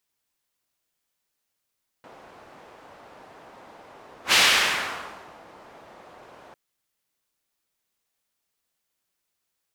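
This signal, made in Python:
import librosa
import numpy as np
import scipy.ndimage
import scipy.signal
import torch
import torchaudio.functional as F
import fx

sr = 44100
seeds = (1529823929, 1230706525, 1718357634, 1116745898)

y = fx.whoosh(sr, seeds[0], length_s=4.5, peak_s=2.29, rise_s=0.1, fall_s=1.14, ends_hz=750.0, peak_hz=3000.0, q=1.1, swell_db=31.5)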